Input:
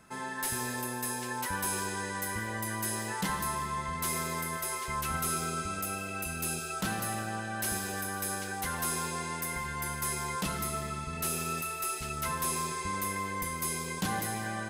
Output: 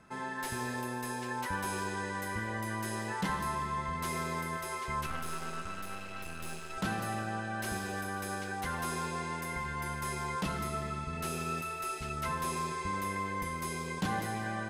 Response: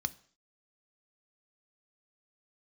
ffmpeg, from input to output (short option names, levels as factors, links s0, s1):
-filter_complex "[0:a]asettb=1/sr,asplit=3[s0][s1][s2];[s0]atrim=end=5.064[s3];[s1]atrim=start=5.06:end=6.78,asetpts=PTS-STARTPTS,afade=t=in:d=0.004:c=qsin,afade=t=out:st=1.716:d=0.004:c=qsin,aeval=exprs='max(val(0),0)':c=same[s4];[s2]atrim=start=6.776[s5];[s3][s4]acrossfade=d=0.004:c1=hsin:c2=qsin[s6];[s6][s5]acrossfade=d=0.004:c1=qsin:c2=hsin,aemphasis=mode=reproduction:type=50kf"